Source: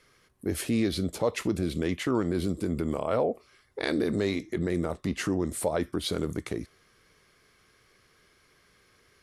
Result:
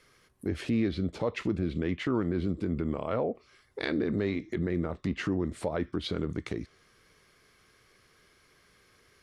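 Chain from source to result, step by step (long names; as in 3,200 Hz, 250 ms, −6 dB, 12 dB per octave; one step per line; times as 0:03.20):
dynamic equaliser 680 Hz, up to −5 dB, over −40 dBFS, Q 0.78
treble cut that deepens with the level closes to 2,400 Hz, closed at −26.5 dBFS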